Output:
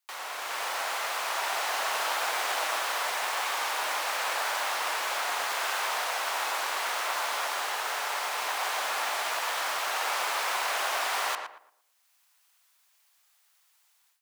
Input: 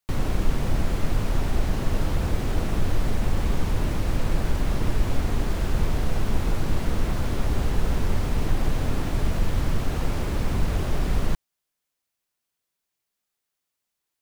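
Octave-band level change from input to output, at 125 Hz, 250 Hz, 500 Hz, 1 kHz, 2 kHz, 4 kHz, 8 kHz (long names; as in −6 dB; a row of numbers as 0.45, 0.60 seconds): below −40 dB, −26.5 dB, −4.0 dB, +7.5 dB, +8.5 dB, +8.0 dB, +8.0 dB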